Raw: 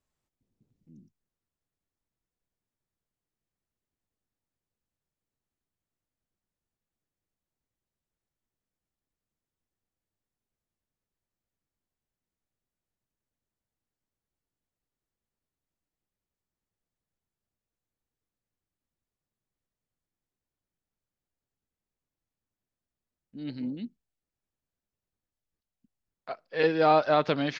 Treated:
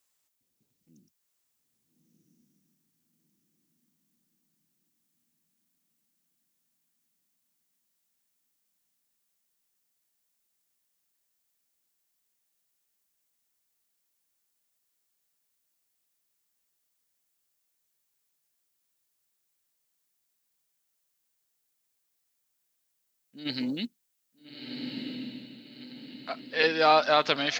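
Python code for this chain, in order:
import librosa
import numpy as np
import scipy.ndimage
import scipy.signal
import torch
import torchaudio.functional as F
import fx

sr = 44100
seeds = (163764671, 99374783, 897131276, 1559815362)

y = fx.tilt_eq(x, sr, slope=4.0)
y = fx.over_compress(y, sr, threshold_db=-40.0, ratio=-1.0, at=(23.45, 23.85), fade=0.02)
y = fx.echo_diffused(y, sr, ms=1343, feedback_pct=47, wet_db=-3)
y = F.gain(torch.from_numpy(y), 2.0).numpy()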